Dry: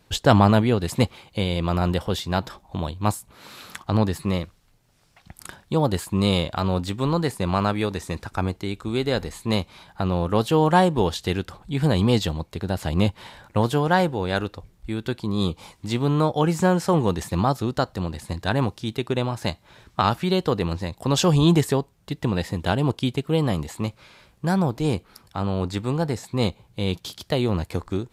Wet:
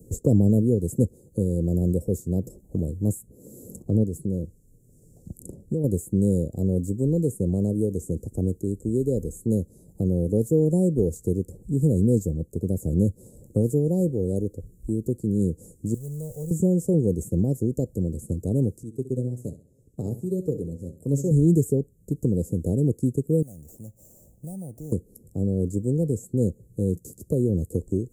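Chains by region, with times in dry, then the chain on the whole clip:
0:04.03–0:05.84: high-shelf EQ 8,600 Hz −5.5 dB + downward compressor 3 to 1, threshold −25 dBFS
0:15.94–0:16.51: converter with a step at zero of −30 dBFS + guitar amp tone stack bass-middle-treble 10-0-10
0:18.83–0:21.31: flanger 1.8 Hz, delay 6.5 ms, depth 1.6 ms, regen +63% + repeating echo 65 ms, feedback 38%, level −9.5 dB + expander for the loud parts, over −42 dBFS
0:23.42–0:24.92: downward compressor 2 to 1, threshold −41 dBFS + low shelf with overshoot 550 Hz −8.5 dB, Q 3 + sample-rate reduction 9,700 Hz
whole clip: Chebyshev band-stop filter 490–7,200 Hz, order 4; flat-topped bell 1,800 Hz +10.5 dB 1.2 octaves; multiband upward and downward compressor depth 40%; level +1 dB

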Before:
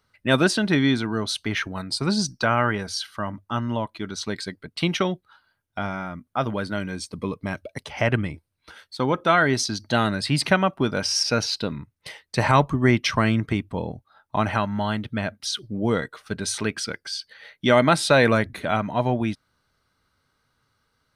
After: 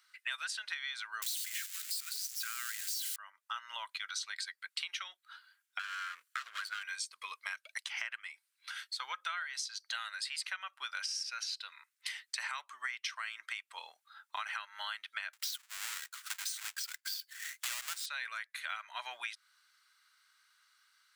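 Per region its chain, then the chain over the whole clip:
0:01.22–0:03.16: spike at every zero crossing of −14.5 dBFS + high-pass filter 1,400 Hz 24 dB per octave
0:05.79–0:06.83: lower of the sound and its delayed copy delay 0.69 ms + parametric band 850 Hz −13.5 dB 0.29 octaves + multiband upward and downward compressor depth 40%
0:15.33–0:18.06: each half-wave held at its own peak + high-shelf EQ 4,700 Hz +4.5 dB
whole clip: high-pass filter 1,400 Hz 24 dB per octave; parametric band 7,500 Hz +5.5 dB 0.25 octaves; downward compressor 10 to 1, threshold −41 dBFS; level +4.5 dB

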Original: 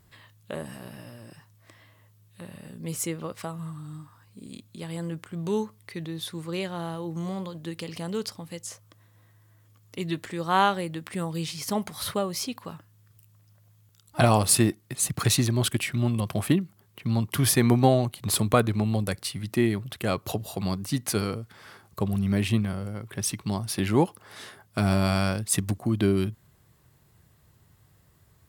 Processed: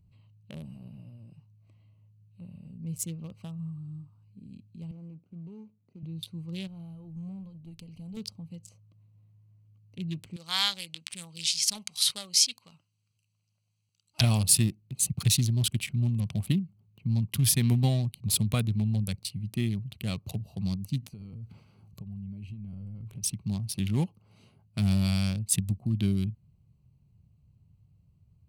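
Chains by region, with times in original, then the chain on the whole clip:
0:04.91–0:06.03: running median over 41 samples + high-pass filter 230 Hz + downward compressor 2.5 to 1, threshold −37 dBFS
0:06.67–0:08.17: parametric band 12,000 Hz +9 dB 0.86 octaves + tube saturation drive 24 dB, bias 0.8
0:10.36–0:14.21: meter weighting curve ITU-R 468 + highs frequency-modulated by the lows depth 0.24 ms
0:21.02–0:23.23: transient designer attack +4 dB, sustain +9 dB + downward compressor 16 to 1, threshold −34 dBFS
whole clip: adaptive Wiener filter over 25 samples; flat-topped bell 710 Hz −15 dB 3 octaves

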